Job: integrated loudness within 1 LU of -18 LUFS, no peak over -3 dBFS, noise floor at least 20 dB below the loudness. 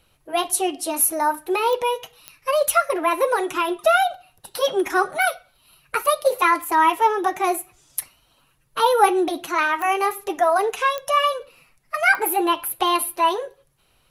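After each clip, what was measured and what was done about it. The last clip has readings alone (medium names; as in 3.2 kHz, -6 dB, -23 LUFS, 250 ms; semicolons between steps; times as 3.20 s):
clicks found 8; loudness -21.0 LUFS; peak level -3.5 dBFS; loudness target -18.0 LUFS
-> de-click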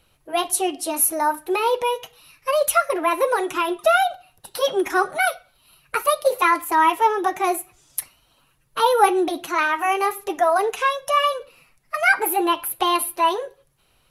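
clicks found 0; loudness -21.0 LUFS; peak level -3.5 dBFS; loudness target -18.0 LUFS
-> trim +3 dB; peak limiter -3 dBFS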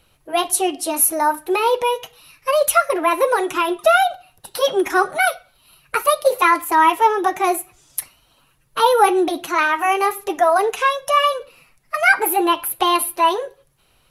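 loudness -18.0 LUFS; peak level -3.0 dBFS; noise floor -60 dBFS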